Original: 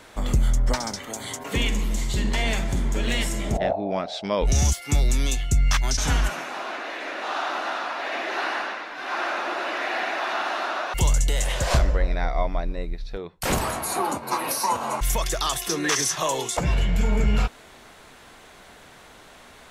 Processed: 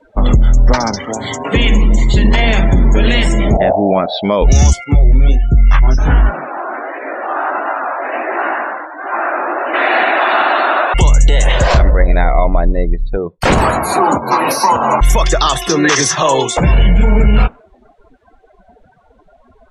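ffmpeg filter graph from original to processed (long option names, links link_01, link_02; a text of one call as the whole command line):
ffmpeg -i in.wav -filter_complex "[0:a]asettb=1/sr,asplit=3[link_01][link_02][link_03];[link_01]atrim=end=4.844[link_04];[link_02]atrim=start=4.84:end=9.74,asetpts=PTS-STARTPTS,afade=type=in:duration=0.004:curve=qsin,afade=type=out:start_time=4.896:duration=0.004:curve=qsin,lowpass=frequency=1700:poles=1,flanger=delay=17:depth=6.4:speed=1.4[link_05];[link_03]atrim=start=9.736[link_06];[link_04][link_05]acrossfade=duration=0.004:curve1=hsin:curve2=qsin[link_07];[link_07][link_06]acrossfade=duration=0.004:curve1=qsin:curve2=hsin,lowpass=frequency=3700:poles=1,afftdn=noise_reduction=33:noise_floor=-39,alimiter=level_in=16.5dB:limit=-1dB:release=50:level=0:latency=1,volume=-1dB" out.wav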